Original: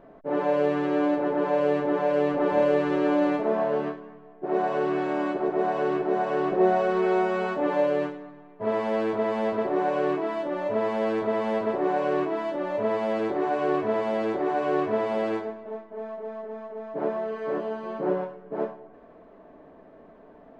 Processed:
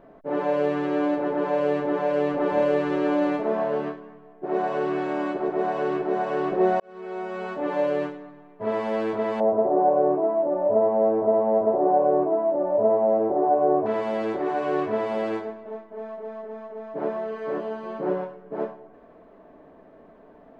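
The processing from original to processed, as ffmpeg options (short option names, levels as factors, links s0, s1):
-filter_complex "[0:a]asettb=1/sr,asplit=3[s0][s1][s2];[s0]atrim=end=9.404[s3];[s1]atrim=start=9.4:end=13.86,asetpts=PTS-STARTPTS,afade=t=in:d=0.004:c=qsin,afade=t=out:st=4.456:d=0.004:c=qsin,lowpass=f=700:t=q:w=2.5[s4];[s2]atrim=start=13.856[s5];[s3][s4]acrossfade=d=0.004:c1=hsin:c2=qsin[s6];[s6][s5]acrossfade=d=0.004:c1=qsin:c2=hsin,asplit=2[s7][s8];[s7]atrim=end=6.8,asetpts=PTS-STARTPTS,afade=t=out:st=6.796:d=0.004:c=hsin[s9];[s8]atrim=start=6.8,asetpts=PTS-STARTPTS,afade=t=in:d=1.09[s10];[s9][s10]concat=n=2:v=0:a=1"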